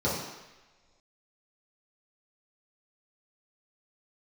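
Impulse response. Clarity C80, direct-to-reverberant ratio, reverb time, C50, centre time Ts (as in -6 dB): 4.5 dB, -9.0 dB, not exponential, 1.5 dB, 61 ms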